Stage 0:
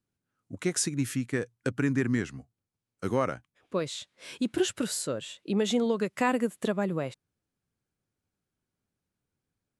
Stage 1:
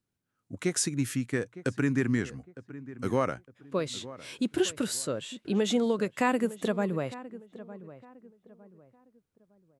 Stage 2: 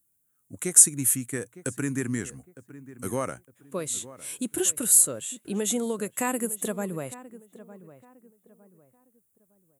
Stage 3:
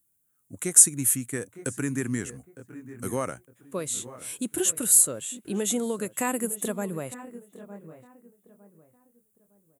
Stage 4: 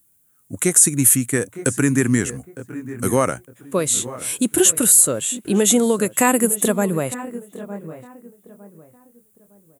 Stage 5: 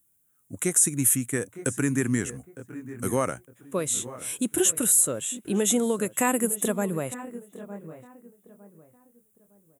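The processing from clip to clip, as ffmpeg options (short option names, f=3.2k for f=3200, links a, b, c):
-filter_complex "[0:a]asplit=2[a][b];[b]adelay=908,lowpass=f=1.4k:p=1,volume=-15.5dB,asplit=2[c][d];[d]adelay=908,lowpass=f=1.4k:p=1,volume=0.34,asplit=2[e][f];[f]adelay=908,lowpass=f=1.4k:p=1,volume=0.34[g];[a][c][e][g]amix=inputs=4:normalize=0"
-af "aexciter=amount=13.4:drive=4.6:freq=7.2k,volume=-2.5dB"
-filter_complex "[0:a]asplit=2[a][b];[b]adelay=932.9,volume=-16dB,highshelf=f=4k:g=-21[c];[a][c]amix=inputs=2:normalize=0"
-af "alimiter=level_in=12.5dB:limit=-1dB:release=50:level=0:latency=1,volume=-1dB"
-af "bandreject=f=4.5k:w=5.2,volume=-7.5dB"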